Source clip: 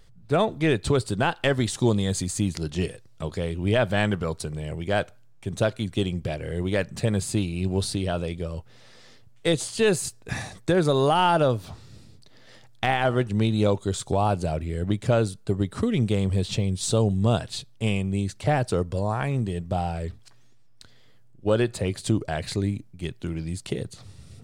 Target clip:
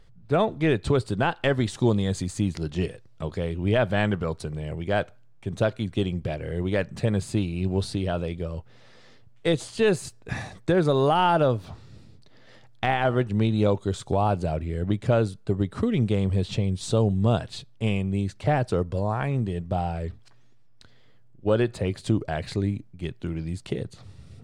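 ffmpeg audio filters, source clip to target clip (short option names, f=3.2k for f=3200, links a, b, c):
-af "highshelf=f=5.3k:g=-12"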